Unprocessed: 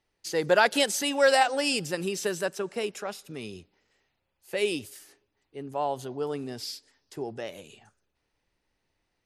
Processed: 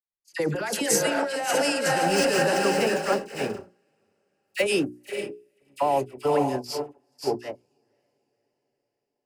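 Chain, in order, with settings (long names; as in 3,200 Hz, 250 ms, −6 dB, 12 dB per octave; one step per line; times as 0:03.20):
0:01.97–0:04.63: running median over 5 samples
feedback delay with all-pass diffusion 532 ms, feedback 54%, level −6 dB
noise gate −32 dBFS, range −38 dB
compressor whose output falls as the input rises −29 dBFS, ratio −1
parametric band 3,600 Hz −9.5 dB 0.38 octaves
mains-hum notches 60/120/180/240/300/360/420 Hz
all-pass dispersion lows, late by 58 ms, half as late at 1,500 Hz
level +6 dB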